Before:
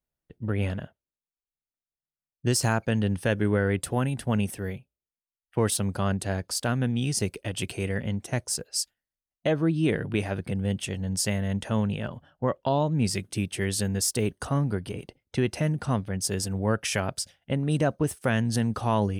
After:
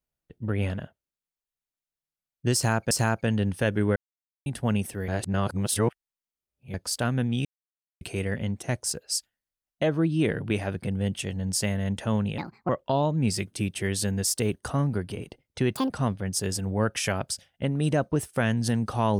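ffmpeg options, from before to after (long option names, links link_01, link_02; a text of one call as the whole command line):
ffmpeg -i in.wav -filter_complex "[0:a]asplit=12[link_01][link_02][link_03][link_04][link_05][link_06][link_07][link_08][link_09][link_10][link_11][link_12];[link_01]atrim=end=2.912[link_13];[link_02]atrim=start=2.548:end=3.6,asetpts=PTS-STARTPTS,afade=type=out:start_time=1.048:duration=0.004:curve=hsin[link_14];[link_03]atrim=start=3.6:end=4.1,asetpts=PTS-STARTPTS,volume=0[link_15];[link_04]atrim=start=4.1:end=4.722,asetpts=PTS-STARTPTS,afade=type=in:duration=0.004:curve=hsin[link_16];[link_05]atrim=start=4.718:end=6.382,asetpts=PTS-STARTPTS,areverse[link_17];[link_06]atrim=start=6.378:end=7.09,asetpts=PTS-STARTPTS,afade=type=out:start_time=0.708:duration=0.004:curve=hsin[link_18];[link_07]atrim=start=7.09:end=7.65,asetpts=PTS-STARTPTS,volume=0[link_19];[link_08]atrim=start=7.65:end=12.024,asetpts=PTS-STARTPTS,afade=type=in:duration=0.004:curve=hsin[link_20];[link_09]atrim=start=12.02:end=12.46,asetpts=PTS-STARTPTS,asetrate=62622,aresample=44100[link_21];[link_10]atrim=start=12.456:end=15.524[link_22];[link_11]atrim=start=15.52:end=15.78,asetpts=PTS-STARTPTS,asetrate=75852,aresample=44100,atrim=end_sample=6666,asetpts=PTS-STARTPTS[link_23];[link_12]atrim=start=15.776[link_24];[link_14][link_15][link_16]concat=n=3:v=0:a=1[link_25];[link_13][link_25]acrossfade=duration=0.004:curve1=hsin:curve2=hsin[link_26];[link_26][link_17]acrossfade=duration=0.004:curve1=hsin:curve2=hsin[link_27];[link_18][link_19][link_20]concat=n=3:v=0:a=1[link_28];[link_27][link_28]acrossfade=duration=0.004:curve1=hsin:curve2=hsin[link_29];[link_29][link_21]acrossfade=duration=0.004:curve1=hsin:curve2=hsin[link_30];[link_30][link_22]acrossfade=duration=0.004:curve1=hsin:curve2=hsin[link_31];[link_31][link_23]acrossfade=duration=0.004:curve1=hsin:curve2=hsin[link_32];[link_32][link_24]acrossfade=duration=0.004:curve1=hsin:curve2=hsin" out.wav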